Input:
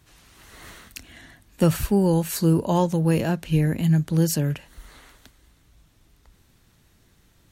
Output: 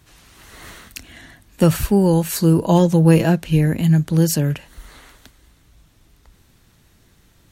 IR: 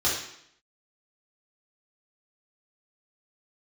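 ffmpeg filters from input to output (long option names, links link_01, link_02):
-filter_complex "[0:a]asettb=1/sr,asplit=3[link_01][link_02][link_03];[link_01]atrim=end=2.614[link_04];[link_02]atrim=start=2.61:end=3.38,asetpts=PTS-STARTPTS,afade=type=in:duration=0.004:curve=qsin,afade=type=out:start_time=0.766:duration=0.004:curve=qsin,aecho=1:1:6.1:0.58,atrim=end_sample=33957[link_05];[link_03]atrim=start=3.376[link_06];[link_04][link_05]acrossfade=duration=0.004:curve1=hsin:curve2=qsin[link_07];[link_07][link_06]acrossfade=duration=0.004:curve1=qsin:curve2=hsin,volume=4.5dB"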